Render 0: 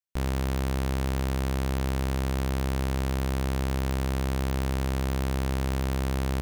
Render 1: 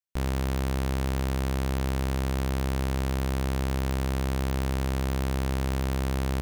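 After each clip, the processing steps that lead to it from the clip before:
no processing that can be heard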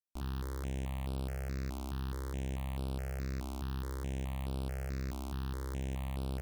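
step-sequenced phaser 4.7 Hz 480–6,600 Hz
level −9 dB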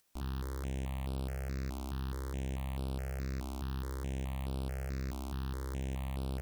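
upward compression, threshold −56 dBFS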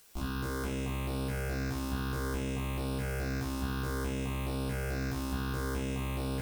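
brickwall limiter −39.5 dBFS, peak gain reduction 7.5 dB
coupled-rooms reverb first 0.39 s, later 2.8 s, from −15 dB, DRR −5.5 dB
level +8.5 dB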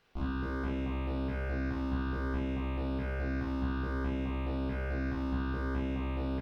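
high-frequency loss of the air 330 metres
double-tracking delay 42 ms −5 dB

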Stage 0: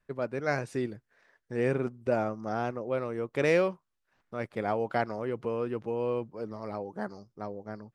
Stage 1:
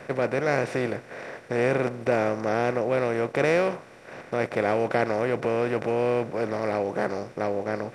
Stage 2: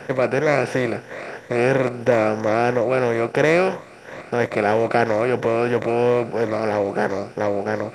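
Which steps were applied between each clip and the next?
compressor on every frequency bin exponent 0.4
rippled gain that drifts along the octave scale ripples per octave 1.1, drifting +3 Hz, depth 7 dB; level +5 dB

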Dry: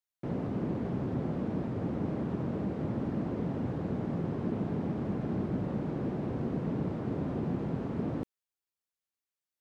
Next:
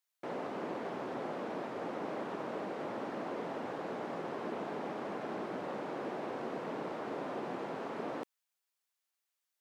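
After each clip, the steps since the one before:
high-pass filter 620 Hz 12 dB per octave
level +5.5 dB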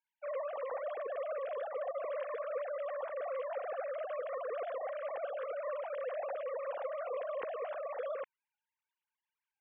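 three sine waves on the formant tracks
level +1 dB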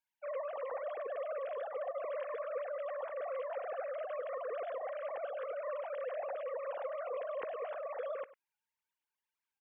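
slap from a distant wall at 17 metres, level −18 dB
level −1 dB

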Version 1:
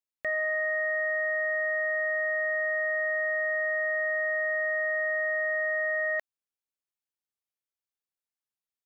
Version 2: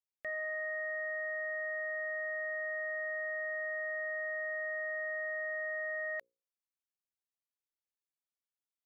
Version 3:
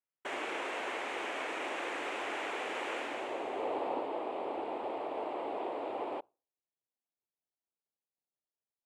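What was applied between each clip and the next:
mains-hum notches 60/120/180/240/300/360/420/480/540 Hz; level −9 dB
low-pass filter sweep 1,300 Hz → 540 Hz, 0:02.99–0:04.09; cochlear-implant simulation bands 4

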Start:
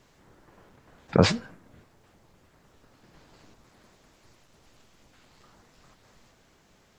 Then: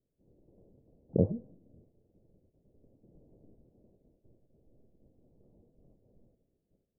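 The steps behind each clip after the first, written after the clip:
noise gate −59 dBFS, range −14 dB
automatic gain control gain up to 5 dB
Butterworth low-pass 570 Hz 36 dB per octave
level −7.5 dB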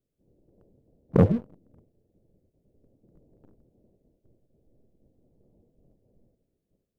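leveller curve on the samples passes 2
level +4 dB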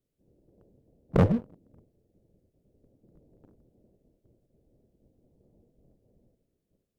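asymmetric clip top −20.5 dBFS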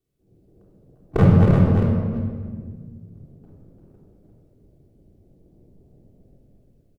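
delay that plays each chunk backwards 264 ms, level −4 dB
single-tap delay 346 ms −4.5 dB
convolution reverb RT60 1.8 s, pre-delay 3 ms, DRR −4 dB

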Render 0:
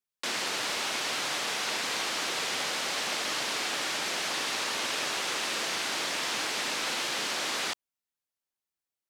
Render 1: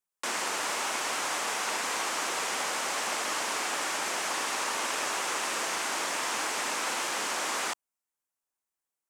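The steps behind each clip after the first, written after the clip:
octave-band graphic EQ 125/1,000/4,000/8,000 Hz −8/+5/−7/+5 dB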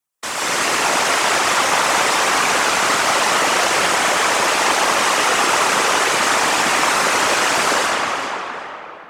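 tape delay 375 ms, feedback 24%, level −6 dB, low-pass 5,900 Hz
comb and all-pass reverb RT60 3.4 s, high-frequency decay 0.55×, pre-delay 100 ms, DRR −7 dB
random phases in short frames
level +7 dB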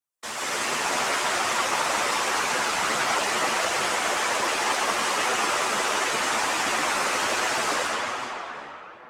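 multi-voice chorus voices 4, 1.2 Hz, delay 11 ms, depth 3.1 ms
level −5.5 dB

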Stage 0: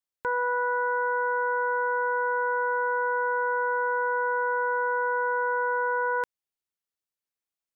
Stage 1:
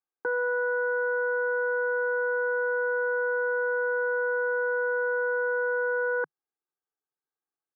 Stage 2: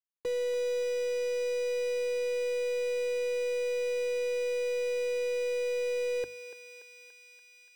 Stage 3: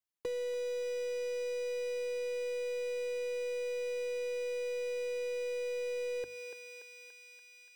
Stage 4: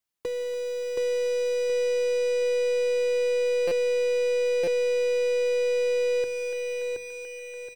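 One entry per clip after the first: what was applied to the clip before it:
Chebyshev band-pass filter 150–1,600 Hz, order 4; comb filter 2.5 ms, depth 96%
running median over 41 samples; mains-hum notches 50/100/150/200/250 Hz; feedback echo with a high-pass in the loop 288 ms, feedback 82%, high-pass 830 Hz, level −9 dB
downward compressor 4 to 1, threshold −35 dBFS, peak gain reduction 5.5 dB
repeating echo 723 ms, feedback 36%, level −3 dB; convolution reverb, pre-delay 150 ms, DRR 16 dB; buffer that repeats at 0:03.67/0:04.63, samples 256, times 7; level +6 dB

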